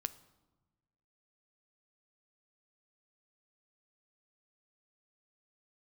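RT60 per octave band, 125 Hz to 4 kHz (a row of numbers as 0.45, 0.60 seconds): 1.7, 1.5, 1.2, 1.1, 0.80, 0.75 seconds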